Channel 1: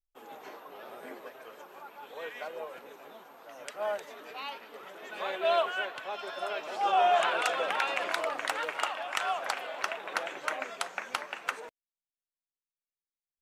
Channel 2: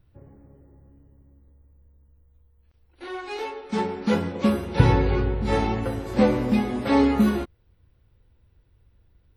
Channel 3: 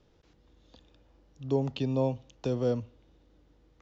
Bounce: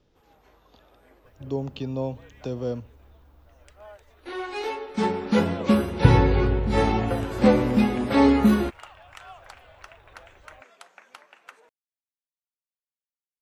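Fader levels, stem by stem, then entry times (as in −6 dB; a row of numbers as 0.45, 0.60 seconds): −13.5, +1.5, −1.0 decibels; 0.00, 1.25, 0.00 seconds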